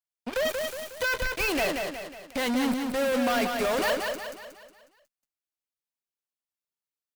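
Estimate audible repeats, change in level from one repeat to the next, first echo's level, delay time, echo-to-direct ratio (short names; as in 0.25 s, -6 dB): 5, -6.5 dB, -4.5 dB, 0.182 s, -3.5 dB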